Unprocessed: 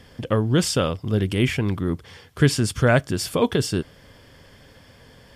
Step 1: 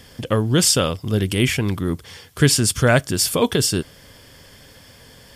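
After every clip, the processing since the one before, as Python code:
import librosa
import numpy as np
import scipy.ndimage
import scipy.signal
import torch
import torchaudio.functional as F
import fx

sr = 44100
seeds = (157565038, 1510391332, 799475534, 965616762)

y = fx.high_shelf(x, sr, hz=4400.0, db=12.0)
y = y * librosa.db_to_amplitude(1.5)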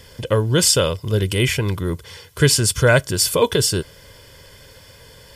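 y = x + 0.52 * np.pad(x, (int(2.0 * sr / 1000.0), 0))[:len(x)]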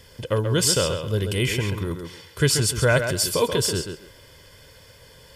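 y = fx.echo_tape(x, sr, ms=134, feedback_pct=22, wet_db=-5.0, lp_hz=5900.0, drive_db=7.0, wow_cents=11)
y = y * librosa.db_to_amplitude(-5.0)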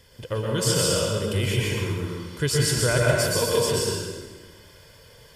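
y = fx.rev_plate(x, sr, seeds[0], rt60_s=1.4, hf_ratio=0.8, predelay_ms=105, drr_db=-3.0)
y = y * librosa.db_to_amplitude(-5.5)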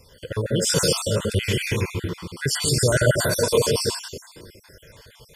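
y = fx.spec_dropout(x, sr, seeds[1], share_pct=47)
y = y * librosa.db_to_amplitude(4.0)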